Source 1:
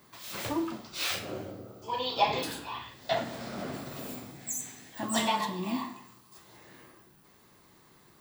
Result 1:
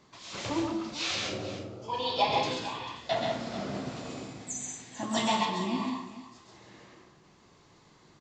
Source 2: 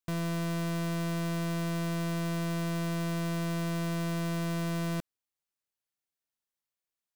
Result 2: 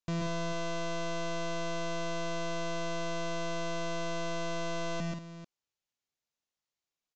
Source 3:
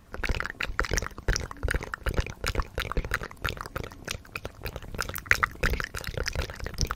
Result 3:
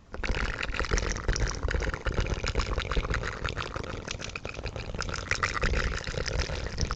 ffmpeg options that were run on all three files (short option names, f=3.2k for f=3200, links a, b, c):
-af "equalizer=f=1.6k:t=o:w=0.64:g=-3.5,aresample=16000,asoftclip=type=tanh:threshold=-15dB,aresample=44100,aecho=1:1:116|135|186|443:0.299|0.668|0.335|0.2"